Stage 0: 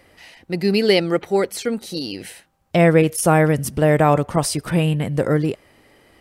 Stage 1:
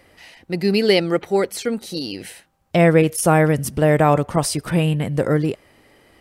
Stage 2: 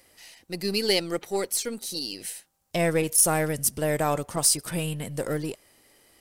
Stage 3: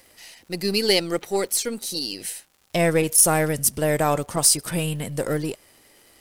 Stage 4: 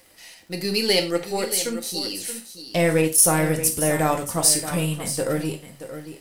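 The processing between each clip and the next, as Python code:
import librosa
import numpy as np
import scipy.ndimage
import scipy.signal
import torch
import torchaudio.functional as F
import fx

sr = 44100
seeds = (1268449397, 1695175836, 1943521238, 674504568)

y1 = x
y2 = np.where(y1 < 0.0, 10.0 ** (-3.0 / 20.0) * y1, y1)
y2 = fx.bass_treble(y2, sr, bass_db=-3, treble_db=15)
y2 = y2 * librosa.db_to_amplitude(-8.0)
y3 = fx.dmg_crackle(y2, sr, seeds[0], per_s=190.0, level_db=-47.0)
y3 = y3 * librosa.db_to_amplitude(4.0)
y4 = y3 + 10.0 ** (-11.5 / 20.0) * np.pad(y3, (int(627 * sr / 1000.0), 0))[:len(y3)]
y4 = fx.rev_gated(y4, sr, seeds[1], gate_ms=130, shape='falling', drr_db=3.5)
y4 = y4 * librosa.db_to_amplitude(-1.5)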